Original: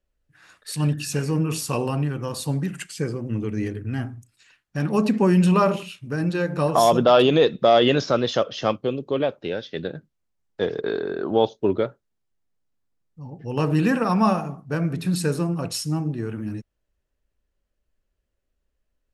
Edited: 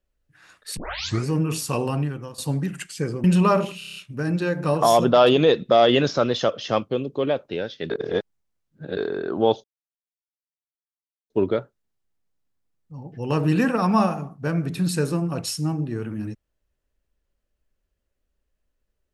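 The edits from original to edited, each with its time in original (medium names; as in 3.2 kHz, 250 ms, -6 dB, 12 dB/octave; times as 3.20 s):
0.77 s: tape start 0.50 s
1.99–2.38 s: fade out, to -14.5 dB
3.24–5.35 s: delete
5.89 s: stutter 0.03 s, 7 plays
9.83–10.90 s: reverse
11.57 s: insert silence 1.66 s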